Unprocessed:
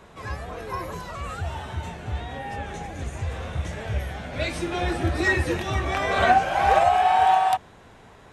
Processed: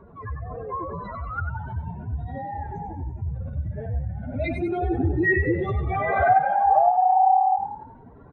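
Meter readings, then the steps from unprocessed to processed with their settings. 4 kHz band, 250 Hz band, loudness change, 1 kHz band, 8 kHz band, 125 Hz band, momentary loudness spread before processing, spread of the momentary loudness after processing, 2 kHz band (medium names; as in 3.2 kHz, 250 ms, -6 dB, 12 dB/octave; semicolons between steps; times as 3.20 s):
under -20 dB, +2.5 dB, +0.5 dB, +1.0 dB, under -30 dB, +1.5 dB, 16 LU, 16 LU, -2.0 dB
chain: spectral contrast enhancement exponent 2.7; small resonant body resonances 260/1400 Hz, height 10 dB; frequency-shifting echo 95 ms, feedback 45%, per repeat +36 Hz, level -7.5 dB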